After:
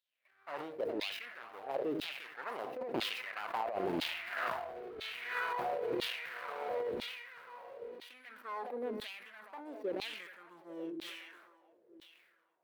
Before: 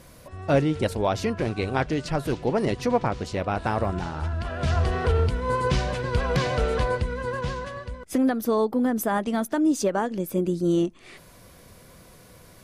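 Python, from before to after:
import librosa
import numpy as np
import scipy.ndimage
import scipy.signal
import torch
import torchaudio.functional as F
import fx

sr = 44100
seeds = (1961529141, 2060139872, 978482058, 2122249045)

p1 = scipy.ndimage.median_filter(x, 41, mode='constant')
p2 = fx.doppler_pass(p1, sr, speed_mps=11, closest_m=2.3, pass_at_s=4.64)
p3 = p2 + fx.echo_split(p2, sr, split_hz=320.0, low_ms=91, high_ms=413, feedback_pct=52, wet_db=-13.5, dry=0)
p4 = fx.filter_lfo_highpass(p3, sr, shape='saw_down', hz=1.0, low_hz=310.0, high_hz=3900.0, q=3.4)
p5 = np.clip(10.0 ** (24.5 / 20.0) * p4, -1.0, 1.0) / 10.0 ** (24.5 / 20.0)
p6 = fx.dynamic_eq(p5, sr, hz=410.0, q=2.5, threshold_db=-49.0, ratio=4.0, max_db=-3)
p7 = fx.over_compress(p6, sr, threshold_db=-44.0, ratio=-1.0)
p8 = fx.peak_eq(p7, sr, hz=6700.0, db=-12.0, octaves=1.3)
p9 = fx.sustainer(p8, sr, db_per_s=43.0)
y = p9 * librosa.db_to_amplitude(6.5)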